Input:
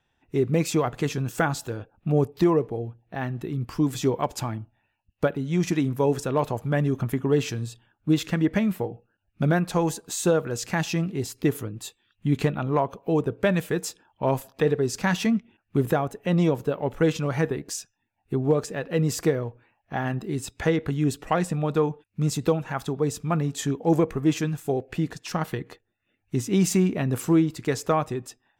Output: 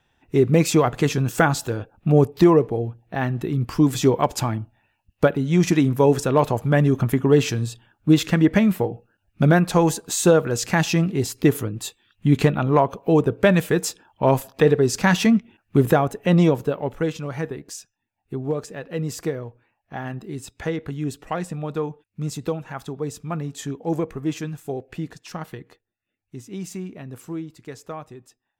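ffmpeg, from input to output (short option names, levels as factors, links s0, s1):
-af "volume=2,afade=t=out:st=16.3:d=0.81:silence=0.334965,afade=t=out:st=24.93:d=1.43:silence=0.398107"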